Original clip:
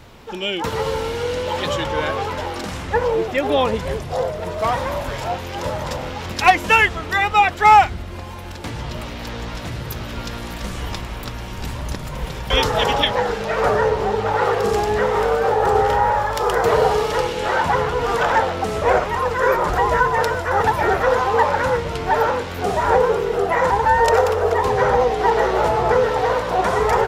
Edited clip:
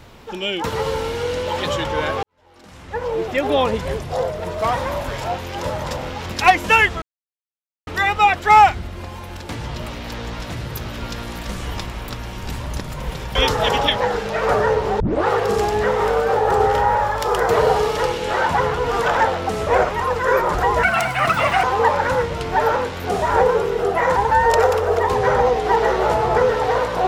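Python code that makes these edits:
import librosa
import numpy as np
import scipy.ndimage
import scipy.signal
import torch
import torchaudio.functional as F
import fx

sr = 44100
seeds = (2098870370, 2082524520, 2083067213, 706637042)

y = fx.edit(x, sr, fx.fade_in_span(start_s=2.23, length_s=1.11, curve='qua'),
    fx.insert_silence(at_s=7.02, length_s=0.85),
    fx.tape_start(start_s=14.15, length_s=0.27),
    fx.speed_span(start_s=19.98, length_s=1.2, speed=1.49), tone=tone)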